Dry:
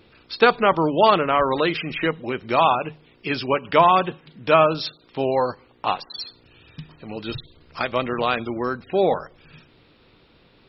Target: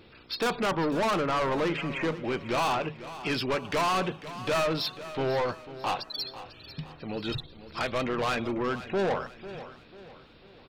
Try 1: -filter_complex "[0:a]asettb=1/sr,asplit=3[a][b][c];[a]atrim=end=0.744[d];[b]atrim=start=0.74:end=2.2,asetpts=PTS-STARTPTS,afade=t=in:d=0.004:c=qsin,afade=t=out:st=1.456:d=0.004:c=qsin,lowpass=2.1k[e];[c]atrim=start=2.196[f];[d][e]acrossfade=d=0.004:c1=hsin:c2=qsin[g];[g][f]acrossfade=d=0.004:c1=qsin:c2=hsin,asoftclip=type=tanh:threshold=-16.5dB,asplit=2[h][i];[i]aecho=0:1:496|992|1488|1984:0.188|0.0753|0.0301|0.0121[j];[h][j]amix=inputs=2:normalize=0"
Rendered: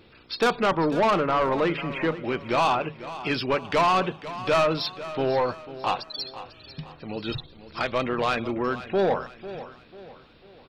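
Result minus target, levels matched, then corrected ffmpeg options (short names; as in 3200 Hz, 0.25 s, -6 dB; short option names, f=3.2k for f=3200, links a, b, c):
soft clip: distortion -5 dB
-filter_complex "[0:a]asettb=1/sr,asplit=3[a][b][c];[a]atrim=end=0.744[d];[b]atrim=start=0.74:end=2.2,asetpts=PTS-STARTPTS,afade=t=in:d=0.004:c=qsin,afade=t=out:st=1.456:d=0.004:c=qsin,lowpass=2.1k[e];[c]atrim=start=2.196[f];[d][e]acrossfade=d=0.004:c1=hsin:c2=qsin[g];[g][f]acrossfade=d=0.004:c1=qsin:c2=hsin,asoftclip=type=tanh:threshold=-24dB,asplit=2[h][i];[i]aecho=0:1:496|992|1488|1984:0.188|0.0753|0.0301|0.0121[j];[h][j]amix=inputs=2:normalize=0"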